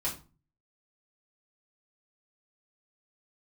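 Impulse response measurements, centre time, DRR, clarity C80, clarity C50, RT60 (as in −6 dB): 20 ms, −7.5 dB, 16.0 dB, 10.0 dB, 0.35 s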